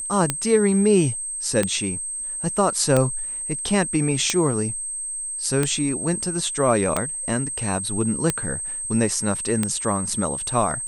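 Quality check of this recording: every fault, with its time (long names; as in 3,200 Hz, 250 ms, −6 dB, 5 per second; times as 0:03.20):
scratch tick 45 rpm −6 dBFS
whistle 8,300 Hz −27 dBFS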